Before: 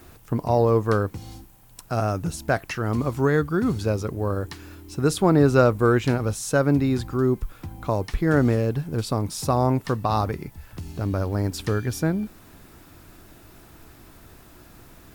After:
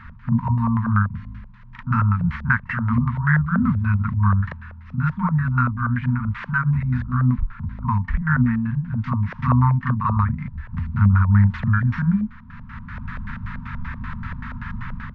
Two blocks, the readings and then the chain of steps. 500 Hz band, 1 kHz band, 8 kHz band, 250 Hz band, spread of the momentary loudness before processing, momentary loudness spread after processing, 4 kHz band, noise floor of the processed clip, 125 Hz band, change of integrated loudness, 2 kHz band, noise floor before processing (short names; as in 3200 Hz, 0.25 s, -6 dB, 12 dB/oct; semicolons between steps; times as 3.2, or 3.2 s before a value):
-23.5 dB, +1.5 dB, under -30 dB, +1.5 dB, 12 LU, 15 LU, under -10 dB, -41 dBFS, +6.5 dB, +2.0 dB, +6.0 dB, -50 dBFS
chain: careless resampling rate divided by 4×, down none, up zero stuff; AGC gain up to 10 dB; FFT band-reject 250–890 Hz; on a send: reverse echo 40 ms -5 dB; on the sum: LFO low-pass square 5.2 Hz 570–1800 Hz; tape spacing loss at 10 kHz 28 dB; gain +9 dB